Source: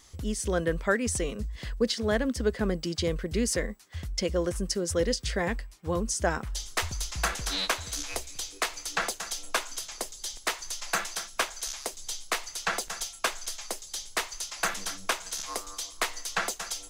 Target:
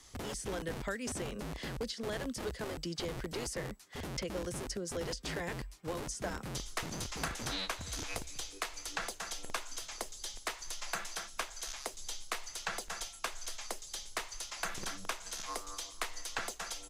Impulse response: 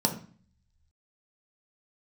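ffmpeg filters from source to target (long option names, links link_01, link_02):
-filter_complex "[0:a]acrossover=split=110|3100[link_01][link_02][link_03];[link_01]acompressor=threshold=-36dB:ratio=4[link_04];[link_02]acompressor=threshold=-36dB:ratio=4[link_05];[link_03]acompressor=threshold=-41dB:ratio=4[link_06];[link_04][link_05][link_06]amix=inputs=3:normalize=0,acrossover=split=230|1400[link_07][link_08][link_09];[link_07]aeval=exprs='(mod(63.1*val(0)+1,2)-1)/63.1':channel_layout=same[link_10];[link_10][link_08][link_09]amix=inputs=3:normalize=0,aresample=32000,aresample=44100,volume=-1.5dB"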